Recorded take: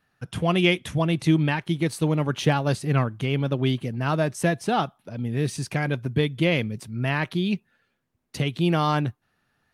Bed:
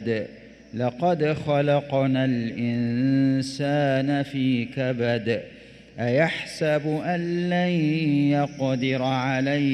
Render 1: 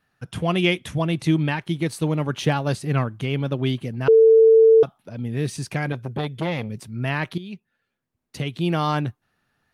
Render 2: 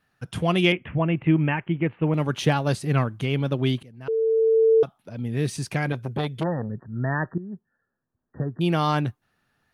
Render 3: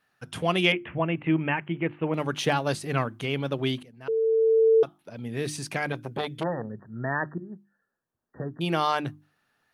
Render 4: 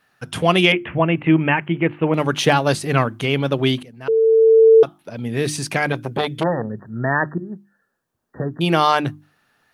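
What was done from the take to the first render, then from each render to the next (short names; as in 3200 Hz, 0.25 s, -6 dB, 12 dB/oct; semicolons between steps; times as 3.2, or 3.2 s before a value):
4.08–4.83 bleep 447 Hz -9 dBFS; 5.92–6.7 core saturation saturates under 770 Hz; 7.38–8.86 fade in, from -13.5 dB
0.72–2.14 steep low-pass 2900 Hz 72 dB/oct; 3.83–5.41 fade in, from -20 dB; 6.43–8.61 brick-wall FIR low-pass 1900 Hz
low shelf 170 Hz -12 dB; notches 50/100/150/200/250/300/350 Hz
gain +9 dB; limiter -1 dBFS, peak gain reduction 3 dB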